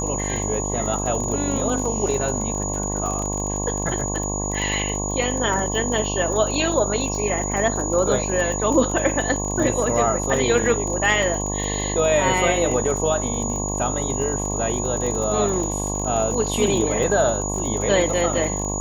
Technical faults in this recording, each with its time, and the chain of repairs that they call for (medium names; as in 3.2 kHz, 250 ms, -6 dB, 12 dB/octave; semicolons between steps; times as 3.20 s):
buzz 50 Hz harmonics 22 -27 dBFS
crackle 32 per s -26 dBFS
whine 6.8 kHz -27 dBFS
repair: de-click; band-stop 6.8 kHz, Q 30; de-hum 50 Hz, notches 22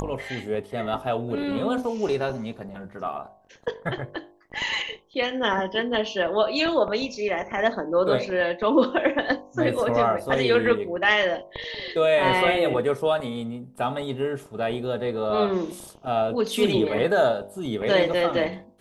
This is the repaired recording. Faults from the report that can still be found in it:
nothing left